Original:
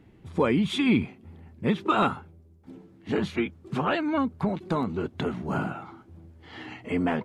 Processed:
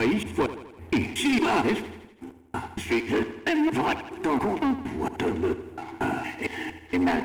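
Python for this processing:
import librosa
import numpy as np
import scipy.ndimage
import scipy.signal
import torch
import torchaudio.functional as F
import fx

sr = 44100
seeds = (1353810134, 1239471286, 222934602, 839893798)

y = fx.block_reorder(x, sr, ms=231.0, group=3)
y = fx.high_shelf(y, sr, hz=3300.0, db=6.0)
y = fx.fixed_phaser(y, sr, hz=840.0, stages=8)
y = fx.leveller(y, sr, passes=3)
y = fx.echo_feedback(y, sr, ms=82, feedback_pct=57, wet_db=-12.5)
y = y * librosa.db_to_amplitude(-3.0)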